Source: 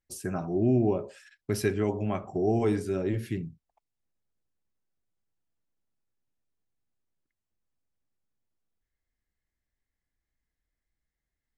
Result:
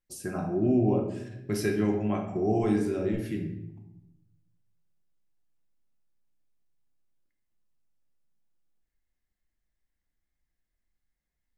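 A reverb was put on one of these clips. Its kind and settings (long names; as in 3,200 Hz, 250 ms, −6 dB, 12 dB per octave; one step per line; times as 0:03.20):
rectangular room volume 270 cubic metres, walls mixed, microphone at 0.92 metres
level −2.5 dB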